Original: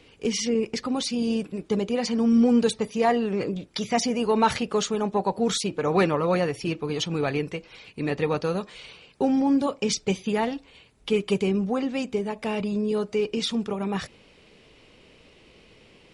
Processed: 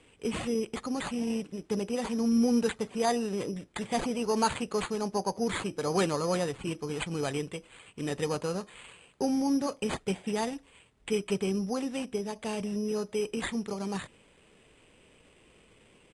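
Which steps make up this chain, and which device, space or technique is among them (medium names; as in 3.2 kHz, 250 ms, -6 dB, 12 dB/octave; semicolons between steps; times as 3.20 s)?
crushed at another speed (playback speed 2×; sample-and-hold 4×; playback speed 0.5×); trim -6 dB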